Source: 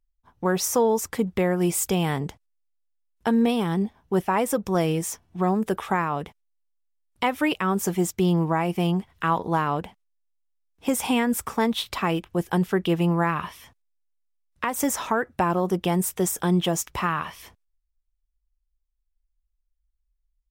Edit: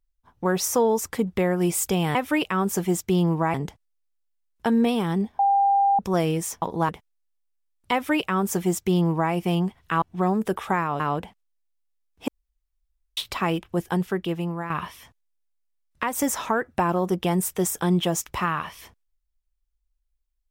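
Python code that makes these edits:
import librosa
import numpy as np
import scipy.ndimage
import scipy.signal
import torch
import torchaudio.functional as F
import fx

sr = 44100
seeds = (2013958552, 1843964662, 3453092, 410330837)

y = fx.edit(x, sr, fx.bleep(start_s=4.0, length_s=0.6, hz=796.0, db=-16.0),
    fx.swap(start_s=5.23, length_s=0.98, other_s=9.34, other_length_s=0.27),
    fx.duplicate(start_s=7.25, length_s=1.39, to_s=2.15),
    fx.room_tone_fill(start_s=10.89, length_s=0.89),
    fx.fade_out_to(start_s=12.32, length_s=0.99, floor_db=-10.5), tone=tone)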